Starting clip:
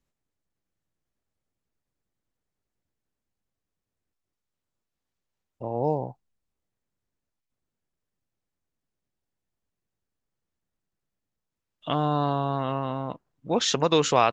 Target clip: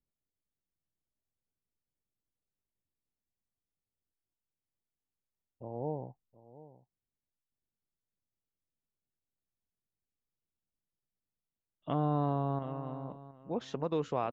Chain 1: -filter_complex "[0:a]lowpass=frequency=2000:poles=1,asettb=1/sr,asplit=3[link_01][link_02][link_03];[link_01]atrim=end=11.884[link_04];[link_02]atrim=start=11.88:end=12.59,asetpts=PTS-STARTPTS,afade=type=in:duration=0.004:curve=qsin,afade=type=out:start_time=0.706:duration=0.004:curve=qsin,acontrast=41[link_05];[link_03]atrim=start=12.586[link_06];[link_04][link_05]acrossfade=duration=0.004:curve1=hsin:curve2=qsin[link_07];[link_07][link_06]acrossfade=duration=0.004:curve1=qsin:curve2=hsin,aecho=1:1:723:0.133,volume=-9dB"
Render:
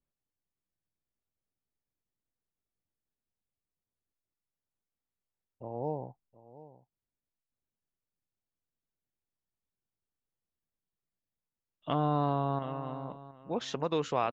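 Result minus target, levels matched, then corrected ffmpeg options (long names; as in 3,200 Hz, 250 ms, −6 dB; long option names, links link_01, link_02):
2,000 Hz band +5.5 dB
-filter_complex "[0:a]lowpass=frequency=610:poles=1,asettb=1/sr,asplit=3[link_01][link_02][link_03];[link_01]atrim=end=11.884[link_04];[link_02]atrim=start=11.88:end=12.59,asetpts=PTS-STARTPTS,afade=type=in:duration=0.004:curve=qsin,afade=type=out:start_time=0.706:duration=0.004:curve=qsin,acontrast=41[link_05];[link_03]atrim=start=12.586[link_06];[link_04][link_05]acrossfade=duration=0.004:curve1=hsin:curve2=qsin[link_07];[link_07][link_06]acrossfade=duration=0.004:curve1=qsin:curve2=hsin,aecho=1:1:723:0.133,volume=-9dB"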